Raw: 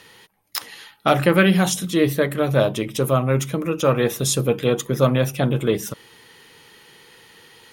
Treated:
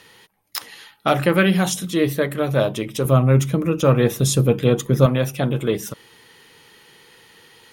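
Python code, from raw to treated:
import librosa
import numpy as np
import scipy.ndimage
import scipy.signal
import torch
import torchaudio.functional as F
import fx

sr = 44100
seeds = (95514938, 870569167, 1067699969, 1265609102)

y = fx.low_shelf(x, sr, hz=260.0, db=9.5, at=(3.05, 5.06))
y = F.gain(torch.from_numpy(y), -1.0).numpy()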